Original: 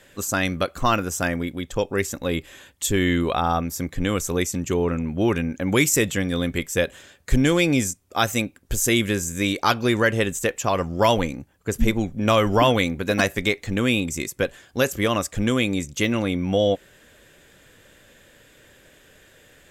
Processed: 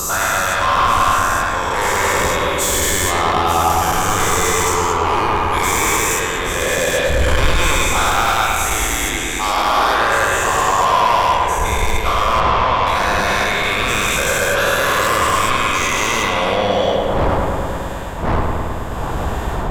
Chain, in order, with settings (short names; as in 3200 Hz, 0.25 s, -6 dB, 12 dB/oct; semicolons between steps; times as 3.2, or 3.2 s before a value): spectral dilation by 0.48 s; wind noise 280 Hz -23 dBFS; graphic EQ 125/250/500/1000/2000 Hz -8/-12/-4/+10/-3 dB; AGC gain up to 11 dB; soft clip -15.5 dBFS, distortion -9 dB; 8.76–9.99 frequency shift -60 Hz; 12.4–12.87 air absorption 120 m; on a send: darkening echo 0.107 s, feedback 82%, low-pass 3600 Hz, level -3.5 dB; on the sum: gain +2 dB